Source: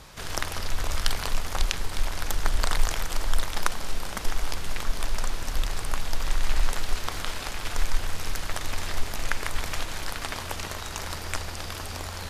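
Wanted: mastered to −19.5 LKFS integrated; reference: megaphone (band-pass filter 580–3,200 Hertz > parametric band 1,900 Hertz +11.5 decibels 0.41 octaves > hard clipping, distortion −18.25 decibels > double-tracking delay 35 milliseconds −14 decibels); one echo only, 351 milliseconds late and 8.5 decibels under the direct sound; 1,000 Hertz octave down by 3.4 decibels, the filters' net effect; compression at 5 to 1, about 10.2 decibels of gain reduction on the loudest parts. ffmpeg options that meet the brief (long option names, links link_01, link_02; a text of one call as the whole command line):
ffmpeg -i in.wav -filter_complex "[0:a]equalizer=frequency=1000:width_type=o:gain=-5,acompressor=threshold=-26dB:ratio=5,highpass=580,lowpass=3200,equalizer=frequency=1900:width_type=o:width=0.41:gain=11.5,aecho=1:1:351:0.376,asoftclip=type=hard:threshold=-19dB,asplit=2[link_01][link_02];[link_02]adelay=35,volume=-14dB[link_03];[link_01][link_03]amix=inputs=2:normalize=0,volume=17dB" out.wav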